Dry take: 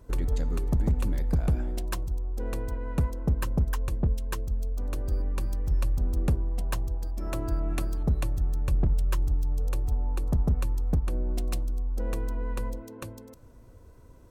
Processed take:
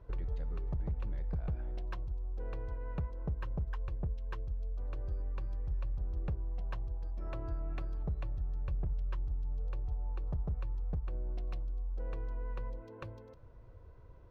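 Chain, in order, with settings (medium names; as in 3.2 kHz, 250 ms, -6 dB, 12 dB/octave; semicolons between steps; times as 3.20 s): peaking EQ 250 Hz -11.5 dB 0.62 oct; compression 2:1, threshold -37 dBFS, peak gain reduction 9 dB; distance through air 280 m; trim -2 dB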